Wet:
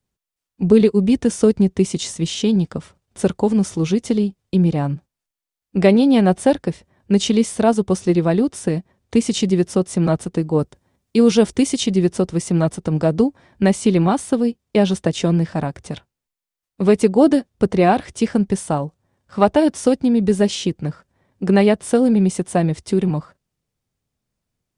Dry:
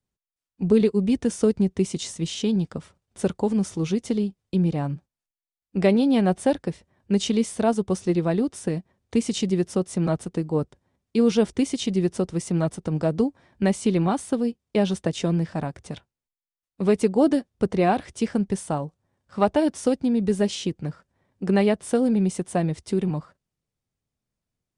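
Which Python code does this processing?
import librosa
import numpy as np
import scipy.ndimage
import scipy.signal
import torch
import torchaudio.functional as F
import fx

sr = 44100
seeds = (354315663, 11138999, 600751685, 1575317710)

y = fx.high_shelf(x, sr, hz=5900.0, db=6.0, at=(10.59, 11.84))
y = y * librosa.db_to_amplitude(6.0)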